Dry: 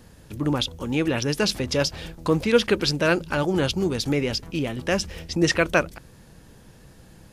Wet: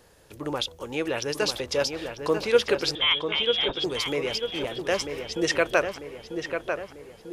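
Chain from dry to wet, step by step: resonant low shelf 320 Hz -9 dB, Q 1.5; 2.95–3.84 s: frequency inversion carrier 3.7 kHz; filtered feedback delay 944 ms, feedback 54%, low-pass 2.5 kHz, level -6 dB; trim -3 dB

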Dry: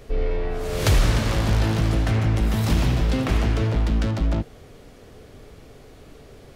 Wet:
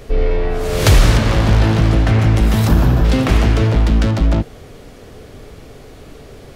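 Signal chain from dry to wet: 1.17–2.19 s: treble shelf 6.1 kHz -9 dB; 2.68–3.05 s: time-frequency box 1.8–11 kHz -9 dB; trim +8 dB

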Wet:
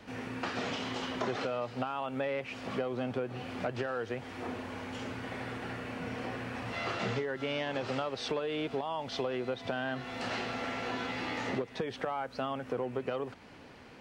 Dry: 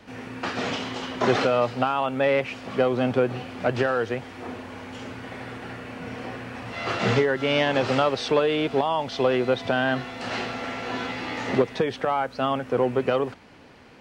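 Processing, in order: compression 4:1, threshold -30 dBFS, peak gain reduction 13 dB; trim -2.5 dB

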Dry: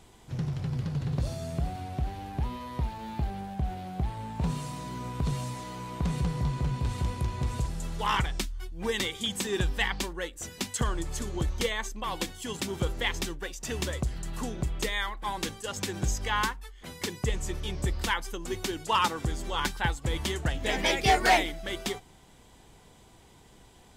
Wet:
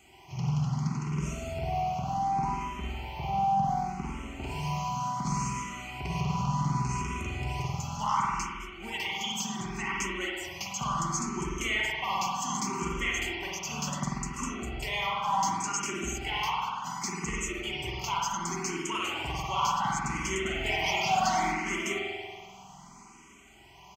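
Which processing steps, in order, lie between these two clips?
8.01–10.02 s: compression 2.5:1, threshold -33 dBFS, peak gain reduction 7.5 dB; static phaser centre 2.5 kHz, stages 8; saturation -21 dBFS, distortion -19 dB; high-pass 330 Hz 6 dB/octave; peaking EQ 6.4 kHz +8 dB 0.21 oct; peak limiter -28.5 dBFS, peak gain reduction 10 dB; comb 5.2 ms, depth 33%; spring tank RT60 1.8 s, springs 47 ms, chirp 70 ms, DRR -4 dB; barber-pole phaser +0.68 Hz; trim +7 dB

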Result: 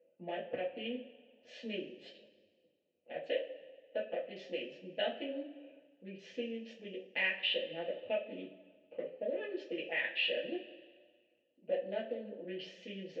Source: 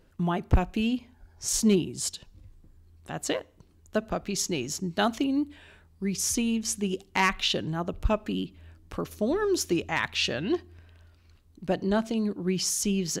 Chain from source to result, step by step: local Wiener filter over 25 samples; vowel filter e; compression 2:1, threshold -42 dBFS, peak gain reduction 7 dB; cabinet simulation 260–3500 Hz, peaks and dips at 390 Hz -8 dB, 590 Hz +3 dB, 1.4 kHz -7 dB, 3 kHz +7 dB; two-slope reverb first 0.27 s, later 1.6 s, from -19 dB, DRR -7.5 dB; trim +1 dB

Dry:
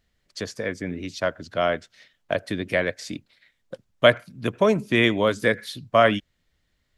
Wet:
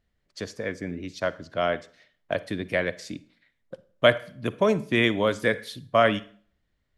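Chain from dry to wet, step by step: on a send at -17 dB: reverberation RT60 0.50 s, pre-delay 39 ms; on the sum: tape noise reduction on one side only decoder only; trim -2.5 dB

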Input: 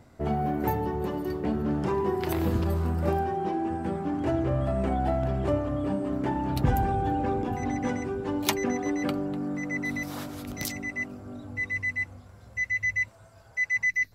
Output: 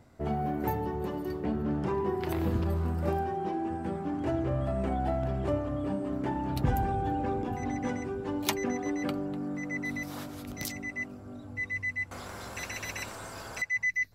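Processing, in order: 1.44–2.88 s: tone controls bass +1 dB, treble -4 dB; 12.11–13.62 s: spectrum-flattening compressor 4:1; trim -3.5 dB

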